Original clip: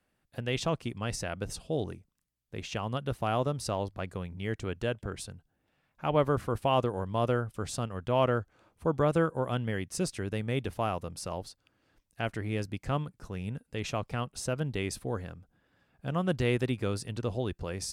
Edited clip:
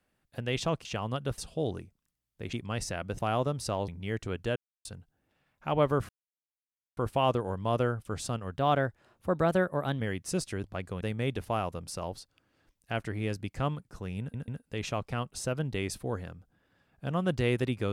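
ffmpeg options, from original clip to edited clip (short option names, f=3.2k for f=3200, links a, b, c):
-filter_complex "[0:a]asplit=15[a][b][c][d][e][f][g][h][i][j][k][l][m][n][o];[a]atrim=end=0.852[p];[b]atrim=start=2.658:end=3.192[q];[c]atrim=start=1.508:end=2.662[r];[d]atrim=start=0.848:end=1.512[s];[e]atrim=start=3.188:end=3.882[t];[f]atrim=start=4.248:end=4.93,asetpts=PTS-STARTPTS,afade=t=out:st=0.678:d=0.004:c=hsin[u];[g]atrim=start=4.93:end=5.22,asetpts=PTS-STARTPTS,volume=0[v];[h]atrim=start=5.22:end=6.46,asetpts=PTS-STARTPTS,afade=t=in:d=0.004:c=hsin,afade=t=out:st=1.236:d=0.004:c=hsin,apad=pad_dur=0.88[w];[i]atrim=start=6.46:end=8.074,asetpts=PTS-STARTPTS,afade=t=in:d=0.004:c=hsin[x];[j]atrim=start=8.07:end=9.66,asetpts=PTS-STARTPTS,asetrate=49392,aresample=44100,atrim=end_sample=62606,asetpts=PTS-STARTPTS[y];[k]atrim=start=9.656:end=10.302[z];[l]atrim=start=3.878:end=4.252[aa];[m]atrim=start=10.298:end=13.632[ab];[n]atrim=start=13.488:end=13.632[ac];[o]atrim=start=13.488[ad];[p][q]acrossfade=d=0.004:c1=hsin:c2=hsin[ae];[ae][r]acrossfade=d=0.004:c1=hsin:c2=hsin[af];[af][s]acrossfade=d=0.004:c1=hsin:c2=hsin[ag];[ag][t]acrossfade=d=0.004:c1=hsin:c2=hsin[ah];[u][v][w][x]concat=n=4:v=0:a=1[ai];[ah][ai]acrossfade=d=0.004:c1=hsin:c2=hsin[aj];[aj][y]acrossfade=d=0.004:c1=hsin:c2=hsin[ak];[ak][z]acrossfade=d=0.004:c1=hsin:c2=hsin[al];[al][aa]acrossfade=d=0.004:c1=hsin:c2=hsin[am];[am][ab]acrossfade=d=0.004:c1=hsin:c2=hsin[an];[an][ac]acrossfade=d=0.004:c1=hsin:c2=hsin[ao];[ao][ad]acrossfade=d=0.004:c1=hsin:c2=hsin"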